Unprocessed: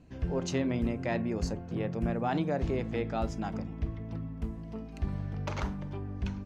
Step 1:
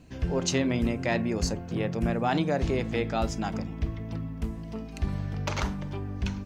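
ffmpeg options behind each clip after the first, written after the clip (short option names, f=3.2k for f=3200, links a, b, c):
-af "highshelf=f=2.4k:g=8.5,volume=3.5dB"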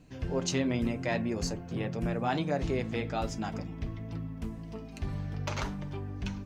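-af "flanger=delay=6.3:depth=2.1:regen=-47:speed=1.9:shape=triangular"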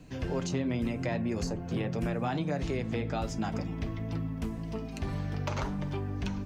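-filter_complex "[0:a]acrossover=split=220|1300[a][b][c];[a]acompressor=threshold=-38dB:ratio=4[d];[b]acompressor=threshold=-39dB:ratio=4[e];[c]acompressor=threshold=-48dB:ratio=4[f];[d][e][f]amix=inputs=3:normalize=0,volume=5.5dB"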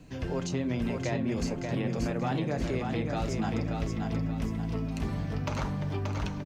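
-af "aecho=1:1:581|1162|1743|2324|2905:0.596|0.244|0.1|0.0411|0.0168"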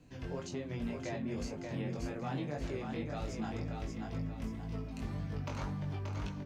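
-af "flanger=delay=19.5:depth=2.8:speed=1.9,volume=-5dB"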